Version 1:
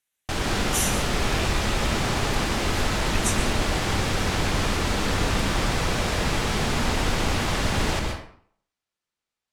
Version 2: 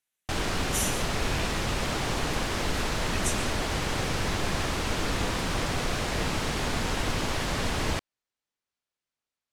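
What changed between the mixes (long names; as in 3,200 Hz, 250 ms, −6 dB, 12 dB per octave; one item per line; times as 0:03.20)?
speech −4.0 dB
background: send off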